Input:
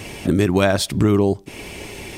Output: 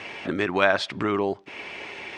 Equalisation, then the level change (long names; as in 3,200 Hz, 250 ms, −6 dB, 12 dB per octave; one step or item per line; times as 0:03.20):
resonant band-pass 1,600 Hz, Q 0.84
high-frequency loss of the air 96 metres
+3.5 dB